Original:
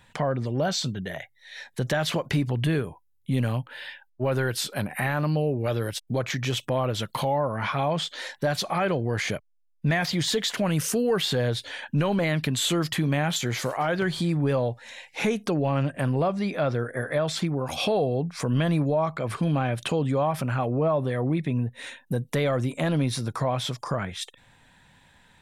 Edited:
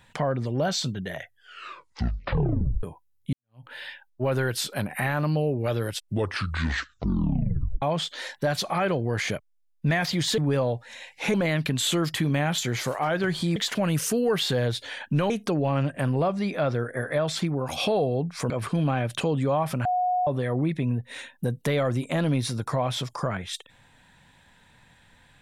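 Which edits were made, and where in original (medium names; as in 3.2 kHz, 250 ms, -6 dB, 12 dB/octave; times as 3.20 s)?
1.15 s: tape stop 1.68 s
3.33–3.65 s: fade in exponential
5.88 s: tape stop 1.94 s
10.38–12.12 s: swap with 14.34–15.30 s
18.50–19.18 s: delete
20.53–20.95 s: bleep 727 Hz -21 dBFS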